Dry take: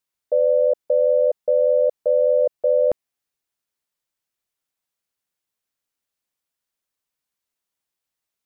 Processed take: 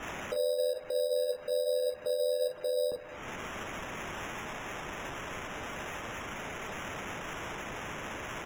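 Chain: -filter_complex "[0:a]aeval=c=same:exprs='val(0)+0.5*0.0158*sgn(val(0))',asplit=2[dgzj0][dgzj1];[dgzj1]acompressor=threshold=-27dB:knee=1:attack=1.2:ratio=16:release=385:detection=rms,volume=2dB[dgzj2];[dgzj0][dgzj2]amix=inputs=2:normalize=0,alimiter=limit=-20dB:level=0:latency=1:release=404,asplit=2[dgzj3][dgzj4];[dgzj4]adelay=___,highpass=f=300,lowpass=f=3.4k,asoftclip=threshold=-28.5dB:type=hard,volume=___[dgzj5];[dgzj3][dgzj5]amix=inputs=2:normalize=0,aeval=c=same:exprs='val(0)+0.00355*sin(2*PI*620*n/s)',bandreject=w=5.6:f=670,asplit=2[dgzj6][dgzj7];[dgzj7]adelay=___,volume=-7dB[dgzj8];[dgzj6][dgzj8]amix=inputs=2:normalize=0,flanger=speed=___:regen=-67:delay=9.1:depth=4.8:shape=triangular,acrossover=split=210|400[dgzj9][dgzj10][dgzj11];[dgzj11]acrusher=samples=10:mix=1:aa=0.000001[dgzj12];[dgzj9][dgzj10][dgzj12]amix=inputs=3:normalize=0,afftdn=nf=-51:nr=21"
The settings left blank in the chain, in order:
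260, -14dB, 42, 1.1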